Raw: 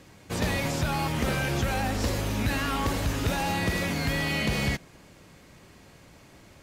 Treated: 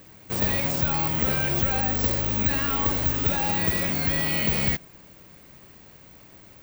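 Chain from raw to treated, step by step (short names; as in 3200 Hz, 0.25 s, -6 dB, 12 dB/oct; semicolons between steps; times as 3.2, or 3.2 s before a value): careless resampling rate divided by 2×, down filtered, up zero stuff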